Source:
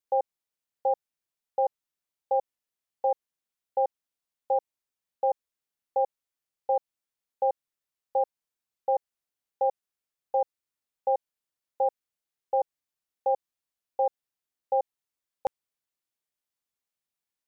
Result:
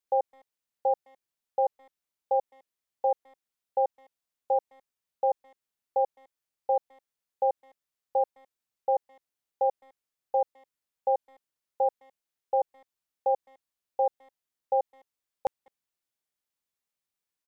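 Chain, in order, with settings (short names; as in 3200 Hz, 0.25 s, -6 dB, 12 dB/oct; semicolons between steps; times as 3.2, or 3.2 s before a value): speakerphone echo 0.21 s, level -28 dB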